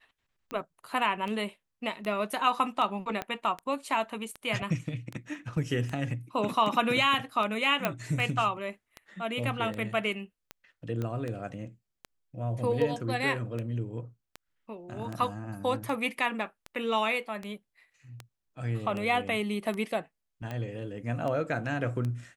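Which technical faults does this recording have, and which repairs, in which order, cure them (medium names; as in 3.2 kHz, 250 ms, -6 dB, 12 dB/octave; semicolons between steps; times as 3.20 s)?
tick 78 rpm -23 dBFS
3.22 s: pop -18 dBFS
7.85 s: pop -12 dBFS
11.02 s: pop -22 dBFS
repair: de-click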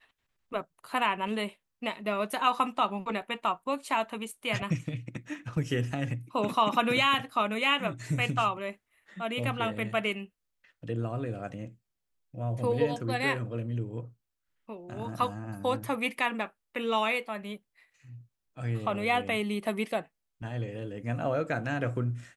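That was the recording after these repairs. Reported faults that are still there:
3.22 s: pop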